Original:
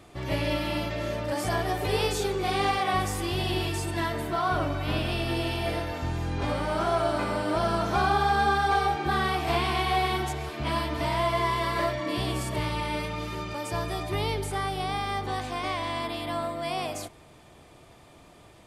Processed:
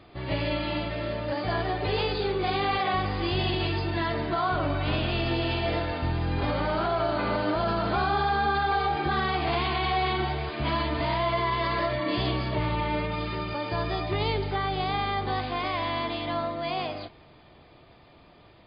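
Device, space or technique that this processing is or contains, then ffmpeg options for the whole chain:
low-bitrate web radio: -filter_complex "[0:a]asettb=1/sr,asplit=3[s0][s1][s2];[s0]atrim=end=12.554[s3];[s1]atrim=start=12.55:end=13.12,asetpts=PTS-STARTPTS,afade=t=in:d=0.004:c=qsin,afade=t=out:st=0.566:d=0.004:c=qsin,aemphasis=mode=reproduction:type=75fm[s4];[s2]atrim=start=13.116[s5];[s3][s4]acrossfade=d=0.004:c1=hsin:c2=qsin[s6];[s6][s5]acrossfade=d=0.004:c1=qsin:c2=hsin,dynaudnorm=f=280:g=17:m=1.41,alimiter=limit=0.133:level=0:latency=1:release=34" -ar 11025 -c:a libmp3lame -b:a 24k

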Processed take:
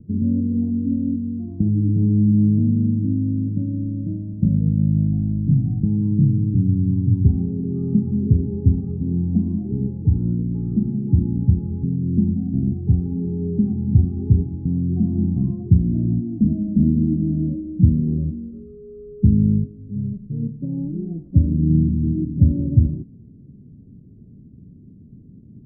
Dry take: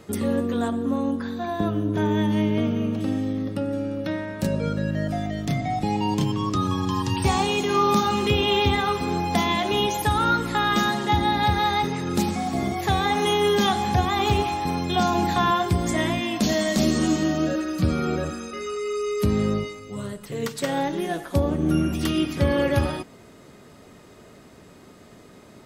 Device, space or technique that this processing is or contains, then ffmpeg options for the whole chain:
the neighbour's flat through the wall: -af "lowpass=f=240:w=0.5412,lowpass=f=240:w=1.3066,equalizer=f=120:t=o:w=0.99:g=4,volume=2.24"

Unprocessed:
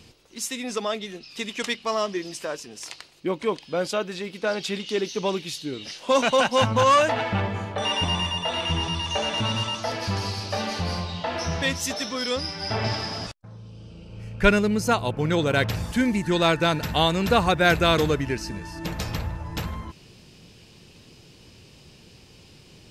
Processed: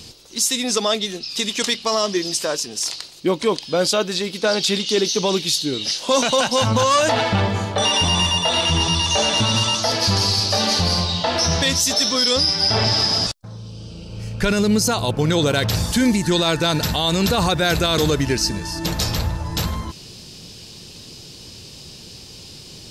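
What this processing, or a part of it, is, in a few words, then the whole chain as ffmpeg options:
over-bright horn tweeter: -af "highshelf=f=3200:t=q:w=1.5:g=7,alimiter=limit=0.15:level=0:latency=1:release=27,volume=2.37"

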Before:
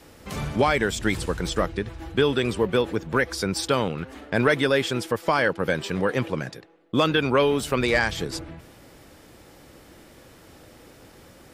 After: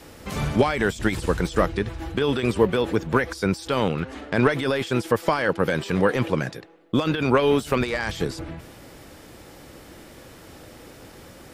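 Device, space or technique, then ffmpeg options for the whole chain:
de-esser from a sidechain: -filter_complex "[0:a]asettb=1/sr,asplit=3[s0][s1][s2];[s0]atrim=end=4.004[s3];[s1]atrim=start=4:end=4.53,asetpts=PTS-STARTPTS,afade=t=in:d=0.004:c=qsin,afade=t=out:st=0.526:d=0.004:c=qsin,lowpass=8600[s4];[s2]atrim=start=4.526[s5];[s3][s4]acrossfade=d=0.004:c1=hsin:c2=qsin[s6];[s6][s5]acrossfade=d=0.004:c1=qsin:c2=hsin,asplit=2[s7][s8];[s8]highpass=4400,apad=whole_len=508905[s9];[s7][s9]sidechaincompress=threshold=0.00794:ratio=16:attack=2.4:release=21,volume=1.68"

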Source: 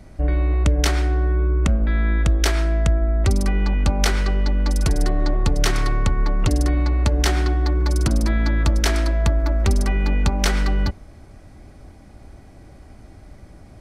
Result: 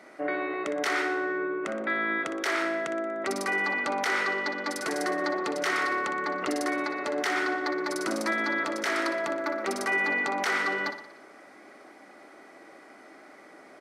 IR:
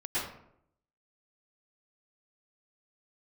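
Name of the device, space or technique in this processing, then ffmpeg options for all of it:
laptop speaker: -af "highpass=f=310:w=0.5412,highpass=f=310:w=1.3066,equalizer=f=1300:t=o:w=0.56:g=7,equalizer=f=2000:t=o:w=0.34:g=8,highshelf=f=5100:g=-5.5,alimiter=limit=0.119:level=0:latency=1:release=27,aecho=1:1:60|120|180|240|300|360:0.316|0.177|0.0992|0.0555|0.0311|0.0174"

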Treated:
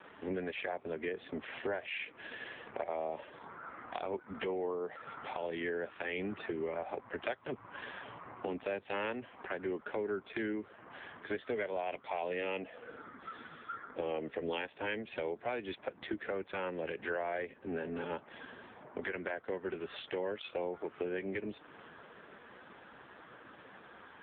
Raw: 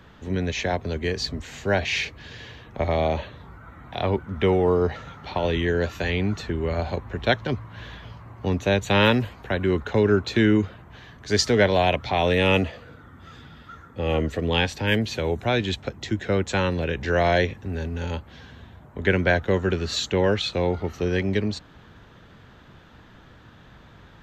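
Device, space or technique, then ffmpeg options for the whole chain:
voicemail: -af "highpass=330,lowpass=2900,acompressor=threshold=0.0141:ratio=8,volume=1.58" -ar 8000 -c:a libopencore_amrnb -b:a 5150

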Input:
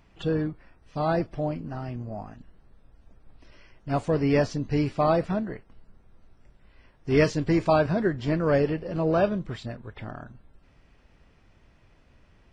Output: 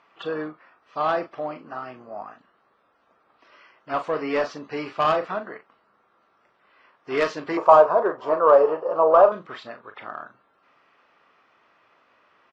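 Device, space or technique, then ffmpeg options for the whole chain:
intercom: -filter_complex "[0:a]highpass=490,lowpass=3900,equalizer=f=1200:t=o:w=0.47:g=10,asoftclip=type=tanh:threshold=0.133,asplit=2[s0][s1];[s1]adelay=39,volume=0.316[s2];[s0][s2]amix=inputs=2:normalize=0,asettb=1/sr,asplit=3[s3][s4][s5];[s3]atrim=end=7.574[s6];[s4]atrim=start=7.57:end=9.32,asetpts=PTS-STARTPTS,afade=t=in:d=0.004:c=qsin,afade=t=out:st=1.746:d=0.004:c=qsin,equalizer=f=125:t=o:w=1:g=-4,equalizer=f=250:t=o:w=1:g=-7,equalizer=f=500:t=o:w=1:g=9,equalizer=f=1000:t=o:w=1:g=12,equalizer=f=2000:t=o:w=1:g=-12,equalizer=f=4000:t=o:w=1:g=-9[s7];[s5]atrim=start=9.316[s8];[s6][s7]acrossfade=d=0.004:c1=hsin:c2=qsin[s9];[s9][s8]acrossfade=d=0.004:c1=qsin:c2=hsin,volume=1.41"

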